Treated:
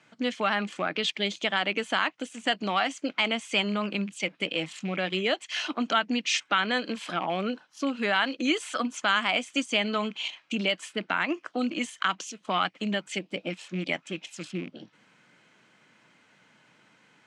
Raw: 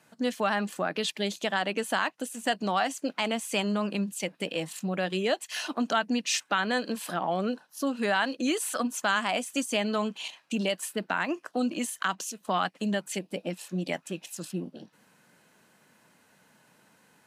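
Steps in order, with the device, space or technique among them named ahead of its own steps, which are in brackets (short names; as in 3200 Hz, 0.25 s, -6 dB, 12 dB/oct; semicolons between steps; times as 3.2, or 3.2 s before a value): car door speaker with a rattle (rattling part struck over -39 dBFS, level -36 dBFS; speaker cabinet 99–7300 Hz, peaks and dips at 120 Hz +6 dB, 310 Hz +4 dB, 1300 Hz +5 dB, 2200 Hz +9 dB, 3200 Hz +7 dB); gain -1.5 dB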